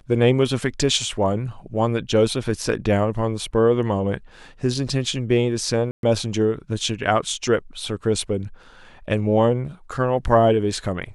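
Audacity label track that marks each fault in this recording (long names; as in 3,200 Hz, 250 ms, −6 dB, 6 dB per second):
5.910000	6.030000	drop-out 122 ms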